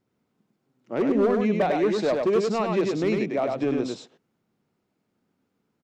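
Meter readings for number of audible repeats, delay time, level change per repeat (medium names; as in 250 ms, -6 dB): 1, 100 ms, no regular repeats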